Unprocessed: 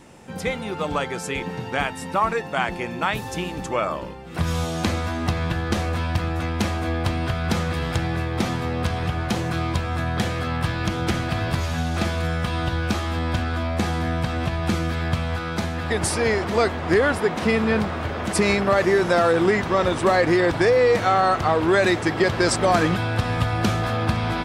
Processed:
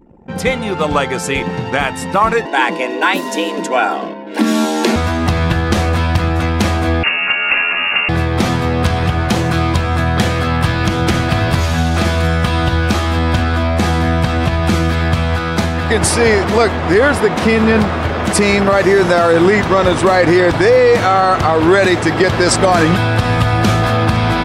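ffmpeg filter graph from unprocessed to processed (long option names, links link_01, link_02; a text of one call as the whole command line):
ffmpeg -i in.wav -filter_complex "[0:a]asettb=1/sr,asplit=3[link_01][link_02][link_03];[link_01]atrim=end=2.454[link_04];[link_02]atrim=start=2.45:end=4.96,asetpts=PTS-STARTPTS,afade=type=in:duration=0.004:curve=qsin,afade=type=out:start_time=2.506:duration=0.004:curve=qsin,asuperstop=centerf=1100:order=20:qfactor=6.4,afreqshift=140[link_05];[link_03]atrim=start=4.956[link_06];[link_04][link_05]acrossfade=duration=0.004:curve1=hsin:curve2=qsin[link_07];[link_07][link_06]acrossfade=duration=0.004:curve1=qsin:curve2=hsin,asettb=1/sr,asplit=3[link_08][link_09][link_10];[link_08]atrim=end=7.034[link_11];[link_09]atrim=start=7.03:end=8.09,asetpts=PTS-STARTPTS,afade=type=in:duration=0.004:curve=qsin,afade=type=out:start_time=1.056:duration=0.004:curve=qsin,lowshelf=frequency=110:gain=-6.5,asplit=2[link_12][link_13];[link_13]adelay=17,volume=-5dB[link_14];[link_12][link_14]amix=inputs=2:normalize=0,atrim=end_sample=46746,lowpass=frequency=2500:width_type=q:width=0.5098,lowpass=frequency=2500:width_type=q:width=0.6013,lowpass=frequency=2500:width_type=q:width=0.9,lowpass=frequency=2500:width_type=q:width=2.563,afreqshift=-2900[link_15];[link_10]atrim=start=8.086[link_16];[link_11][link_15]acrossfade=duration=0.004:curve1=hsin:curve2=qsin[link_17];[link_17][link_16]acrossfade=duration=0.004:curve1=qsin:curve2=hsin,anlmdn=0.251,alimiter=level_in=11dB:limit=-1dB:release=50:level=0:latency=1,volume=-1dB" out.wav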